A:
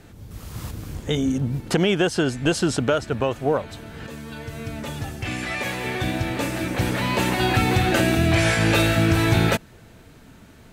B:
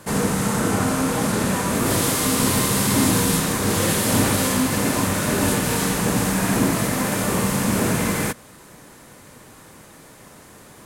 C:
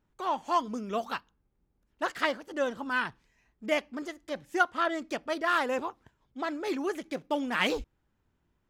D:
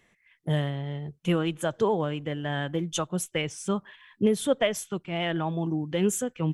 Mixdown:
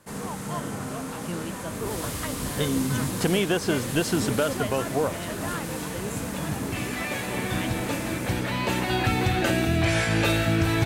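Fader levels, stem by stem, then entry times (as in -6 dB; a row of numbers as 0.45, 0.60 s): -4.0, -13.0, -9.0, -10.0 dB; 1.50, 0.00, 0.00, 0.00 s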